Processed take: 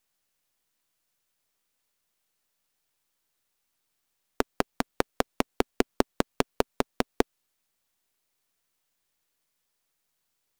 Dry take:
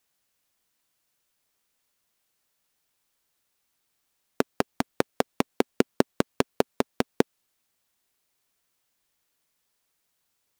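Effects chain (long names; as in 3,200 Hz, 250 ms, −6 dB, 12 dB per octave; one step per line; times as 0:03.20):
gain on one half-wave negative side −7 dB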